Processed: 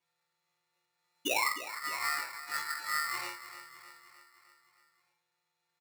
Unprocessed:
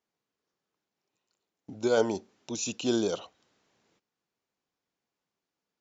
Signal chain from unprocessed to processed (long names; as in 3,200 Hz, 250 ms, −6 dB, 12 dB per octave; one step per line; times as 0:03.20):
every partial snapped to a pitch grid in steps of 3 semitones
treble cut that deepens with the level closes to 1,000 Hz, closed at −21 dBFS
low-pass filter 1,800 Hz 12 dB per octave
comb filter 1.6 ms, depth 31%
reversed playback
downward compressor 5 to 1, threshold −39 dBFS, peak gain reduction 17 dB
reversed playback
sound drawn into the spectrogram fall, 0:01.25–0:01.49, 330–1,400 Hz −35 dBFS
on a send: repeating echo 307 ms, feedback 57%, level −13 dB
on the sum: rectangular room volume 230 cubic metres, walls furnished, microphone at 2.8 metres
ring modulator with a square carrier 1,600 Hz